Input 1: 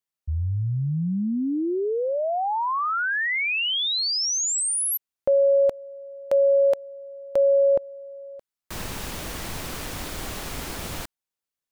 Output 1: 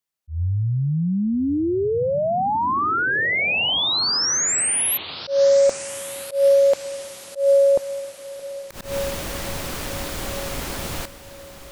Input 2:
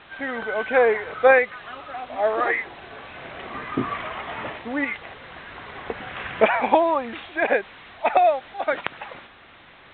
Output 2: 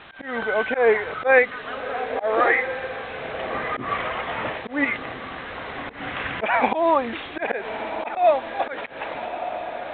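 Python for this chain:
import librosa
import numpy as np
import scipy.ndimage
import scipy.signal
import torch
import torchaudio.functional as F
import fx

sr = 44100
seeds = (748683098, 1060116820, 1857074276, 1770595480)

y = fx.echo_diffused(x, sr, ms=1307, feedback_pct=47, wet_db=-13.5)
y = fx.auto_swell(y, sr, attack_ms=150.0)
y = F.gain(torch.from_numpy(y), 3.5).numpy()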